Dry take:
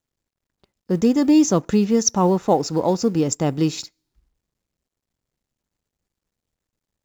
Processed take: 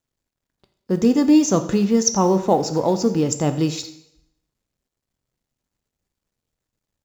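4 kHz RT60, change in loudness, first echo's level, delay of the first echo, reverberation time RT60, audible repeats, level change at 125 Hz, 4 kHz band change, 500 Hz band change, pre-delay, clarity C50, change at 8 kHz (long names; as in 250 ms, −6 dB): 0.70 s, +0.5 dB, −18.5 dB, 86 ms, 0.75 s, 1, 0.0 dB, +0.5 dB, +0.5 dB, 5 ms, 11.5 dB, can't be measured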